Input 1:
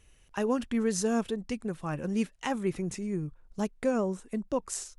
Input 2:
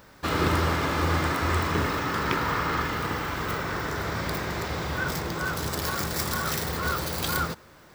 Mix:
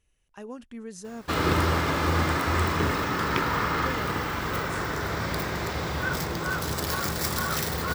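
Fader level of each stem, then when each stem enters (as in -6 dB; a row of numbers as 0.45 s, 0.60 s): -11.5 dB, +0.5 dB; 0.00 s, 1.05 s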